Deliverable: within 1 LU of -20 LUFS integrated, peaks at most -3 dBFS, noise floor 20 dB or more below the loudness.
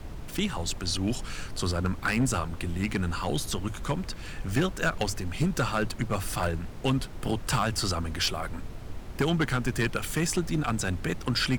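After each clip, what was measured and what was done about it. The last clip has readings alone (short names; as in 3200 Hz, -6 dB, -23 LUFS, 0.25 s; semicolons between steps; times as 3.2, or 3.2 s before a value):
clipped 0.7%; flat tops at -18.5 dBFS; noise floor -40 dBFS; noise floor target -50 dBFS; loudness -29.5 LUFS; peak -18.5 dBFS; loudness target -20.0 LUFS
-> clip repair -18.5 dBFS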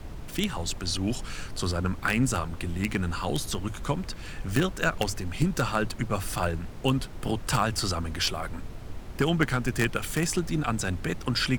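clipped 0.0%; noise floor -40 dBFS; noise floor target -49 dBFS
-> noise print and reduce 9 dB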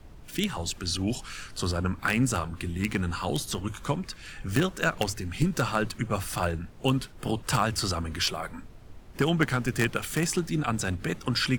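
noise floor -48 dBFS; noise floor target -49 dBFS
-> noise print and reduce 6 dB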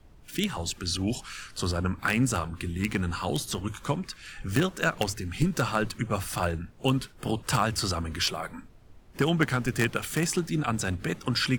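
noise floor -52 dBFS; loudness -29.0 LUFS; peak -9.5 dBFS; loudness target -20.0 LUFS
-> gain +9 dB; limiter -3 dBFS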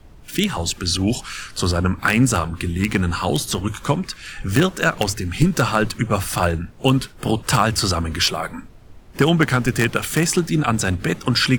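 loudness -20.5 LUFS; peak -3.0 dBFS; noise floor -43 dBFS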